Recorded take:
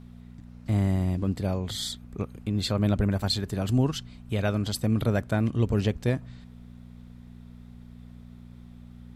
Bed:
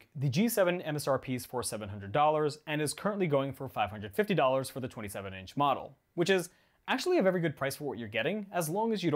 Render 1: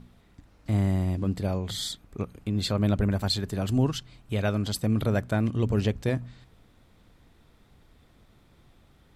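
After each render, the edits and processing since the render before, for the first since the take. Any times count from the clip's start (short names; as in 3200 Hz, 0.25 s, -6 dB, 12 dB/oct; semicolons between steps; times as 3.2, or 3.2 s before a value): de-hum 60 Hz, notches 4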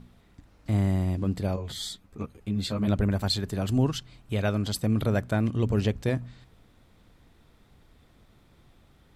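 1.56–2.88 ensemble effect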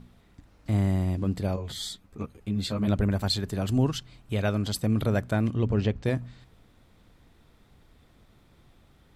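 5.54–6.05 air absorption 110 m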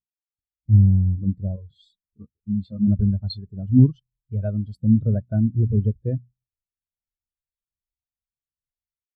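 AGC gain up to 10 dB; spectral expander 2.5:1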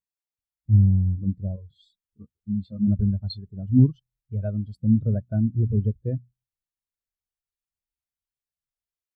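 gain -2.5 dB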